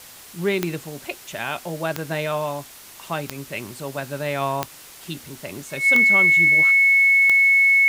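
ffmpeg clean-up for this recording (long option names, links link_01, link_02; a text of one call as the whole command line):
ffmpeg -i in.wav -af "adeclick=threshold=4,bandreject=frequency=2200:width=30,afwtdn=0.0079" out.wav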